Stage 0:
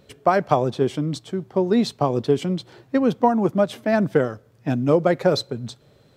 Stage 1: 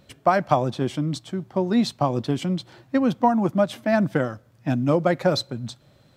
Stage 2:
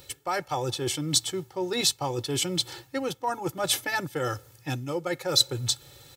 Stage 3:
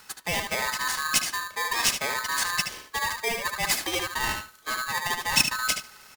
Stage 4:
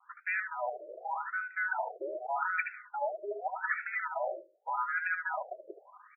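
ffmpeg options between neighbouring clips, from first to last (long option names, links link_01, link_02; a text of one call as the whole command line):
ffmpeg -i in.wav -af "equalizer=frequency=430:width_type=o:width=0.29:gain=-12.5" out.wav
ffmpeg -i in.wav -af "aecho=1:1:2.3:0.97,areverse,acompressor=threshold=-27dB:ratio=12,areverse,crystalizer=i=5:c=0" out.wav
ffmpeg -i in.wav -filter_complex "[0:a]asplit=2[link_01][link_02];[link_02]adelay=74,lowpass=frequency=4300:poles=1,volume=-5dB,asplit=2[link_03][link_04];[link_04]adelay=74,lowpass=frequency=4300:poles=1,volume=0.18,asplit=2[link_05][link_06];[link_06]adelay=74,lowpass=frequency=4300:poles=1,volume=0.18[link_07];[link_03][link_05][link_07]amix=inputs=3:normalize=0[link_08];[link_01][link_08]amix=inputs=2:normalize=0,aeval=exprs='val(0)*sgn(sin(2*PI*1400*n/s))':channel_layout=same" out.wav
ffmpeg -i in.wav -af "highpass=frequency=160:width_type=q:width=0.5412,highpass=frequency=160:width_type=q:width=1.307,lowpass=frequency=2700:width_type=q:width=0.5176,lowpass=frequency=2700:width_type=q:width=0.7071,lowpass=frequency=2700:width_type=q:width=1.932,afreqshift=-280,agate=range=-33dB:threshold=-51dB:ratio=3:detection=peak,afftfilt=real='re*between(b*sr/1024,450*pow(1900/450,0.5+0.5*sin(2*PI*0.84*pts/sr))/1.41,450*pow(1900/450,0.5+0.5*sin(2*PI*0.84*pts/sr))*1.41)':imag='im*between(b*sr/1024,450*pow(1900/450,0.5+0.5*sin(2*PI*0.84*pts/sr))/1.41,450*pow(1900/450,0.5+0.5*sin(2*PI*0.84*pts/sr))*1.41)':win_size=1024:overlap=0.75" out.wav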